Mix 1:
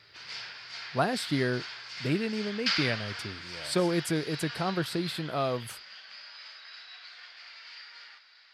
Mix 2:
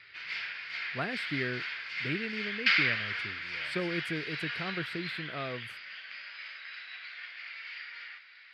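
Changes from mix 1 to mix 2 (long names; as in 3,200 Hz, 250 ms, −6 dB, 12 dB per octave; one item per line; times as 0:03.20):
speech −7.0 dB
master: add drawn EQ curve 420 Hz 0 dB, 860 Hz −6 dB, 2,200 Hz +10 dB, 6,200 Hz −12 dB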